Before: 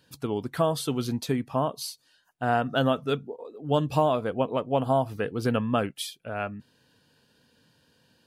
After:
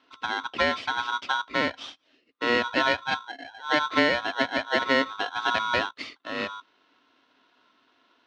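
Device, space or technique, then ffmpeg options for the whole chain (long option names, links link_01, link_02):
ring modulator pedal into a guitar cabinet: -af "aeval=exprs='val(0)*sgn(sin(2*PI*1200*n/s))':channel_layout=same,highpass=110,equalizer=frequency=120:width_type=q:width=4:gain=-7,equalizer=frequency=170:width_type=q:width=4:gain=-7,equalizer=frequency=270:width_type=q:width=4:gain=9,equalizer=frequency=810:width_type=q:width=4:gain=-4,equalizer=frequency=1700:width_type=q:width=4:gain=-3,lowpass=frequency=4000:width=0.5412,lowpass=frequency=4000:width=1.3066,volume=1.5dB"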